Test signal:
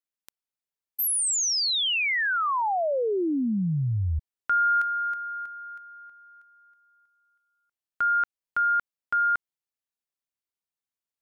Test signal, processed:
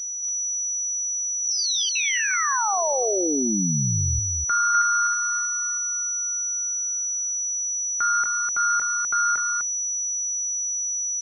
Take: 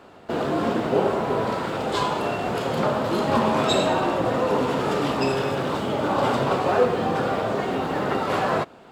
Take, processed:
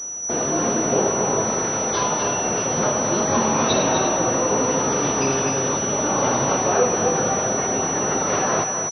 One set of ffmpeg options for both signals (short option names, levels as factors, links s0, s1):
-filter_complex "[0:a]acrossover=split=640[s0][s1];[s1]adynamicsmooth=sensitivity=0.5:basefreq=8000[s2];[s0][s2]amix=inputs=2:normalize=0,aeval=exprs='val(0)+0.0447*sin(2*PI*5900*n/s)':c=same,aecho=1:1:251:0.531" -ar 24000 -c:a mp2 -b:a 32k